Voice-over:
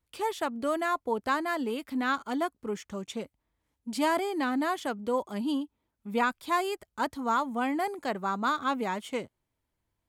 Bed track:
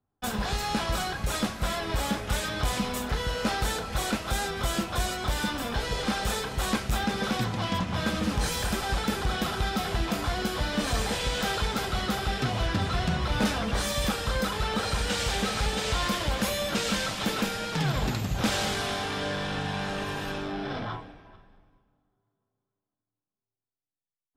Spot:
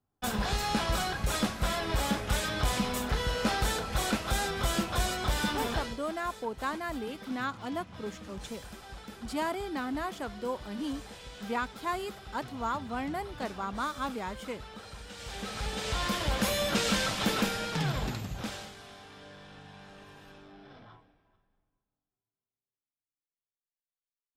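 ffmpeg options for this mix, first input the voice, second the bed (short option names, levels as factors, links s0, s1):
-filter_complex "[0:a]adelay=5350,volume=0.531[s0];[1:a]volume=6.68,afade=t=out:st=5.7:d=0.28:silence=0.149624,afade=t=in:st=15.14:d=1.46:silence=0.133352,afade=t=out:st=17.36:d=1.36:silence=0.112202[s1];[s0][s1]amix=inputs=2:normalize=0"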